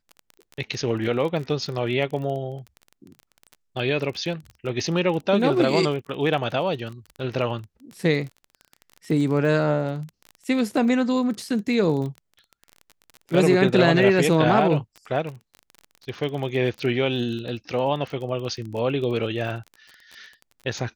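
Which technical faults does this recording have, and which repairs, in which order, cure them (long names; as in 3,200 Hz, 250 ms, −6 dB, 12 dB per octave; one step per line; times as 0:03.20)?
surface crackle 26 per second −31 dBFS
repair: click removal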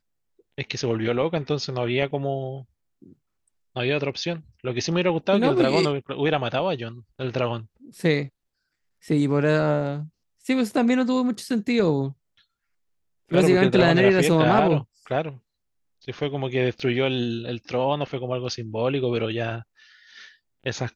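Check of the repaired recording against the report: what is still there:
none of them is left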